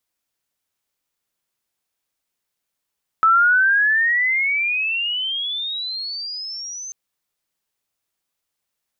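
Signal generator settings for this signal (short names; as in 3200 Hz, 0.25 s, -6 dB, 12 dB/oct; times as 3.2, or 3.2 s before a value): chirp logarithmic 1300 Hz -> 6300 Hz -10.5 dBFS -> -29.5 dBFS 3.69 s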